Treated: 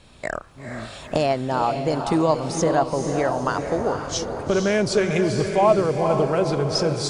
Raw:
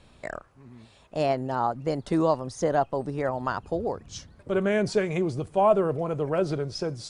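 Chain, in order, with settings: recorder AGC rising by 13 dB/s; peaking EQ 6.8 kHz +4.5 dB 2.7 oct; on a send: echo that smears into a reverb 468 ms, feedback 46%, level -6 dB; on the sum: trim +3 dB

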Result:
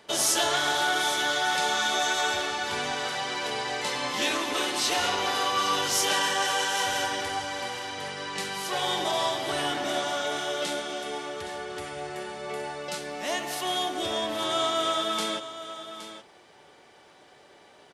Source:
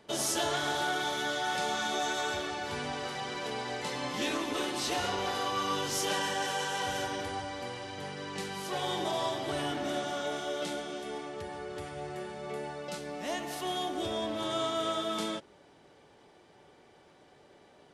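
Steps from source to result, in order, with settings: bass shelf 480 Hz -10.5 dB; on a send: delay 818 ms -12.5 dB; on the sum: trim +8 dB

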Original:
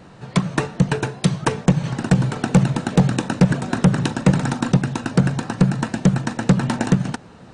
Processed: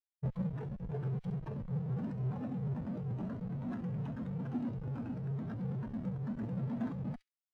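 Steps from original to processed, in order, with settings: dynamic bell 460 Hz, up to -6 dB, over -34 dBFS, Q 1.3; gate -35 dBFS, range -7 dB; compression 6:1, threshold -24 dBFS, peak gain reduction 13.5 dB; Schmitt trigger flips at -35 dBFS; feedback echo behind a high-pass 67 ms, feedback 33%, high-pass 2.2 kHz, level -6.5 dB; peak limiter -30.5 dBFS, peak gain reduction 8.5 dB; bass shelf 260 Hz -9 dB; spectral contrast expander 2.5:1

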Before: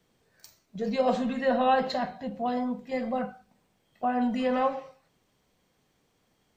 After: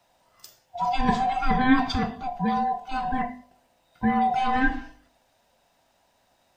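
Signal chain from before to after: split-band scrambler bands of 500 Hz; de-hum 50.27 Hz, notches 22; trim +5 dB

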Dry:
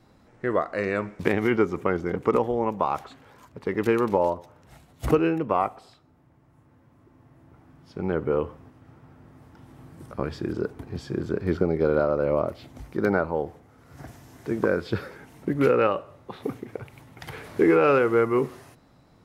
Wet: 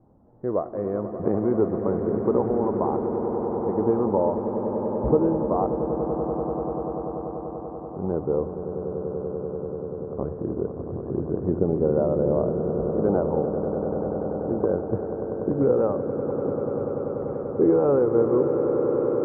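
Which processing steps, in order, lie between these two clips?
inverse Chebyshev low-pass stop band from 5.1 kHz, stop band 80 dB; on a send: echo with a slow build-up 97 ms, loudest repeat 8, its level -11.5 dB

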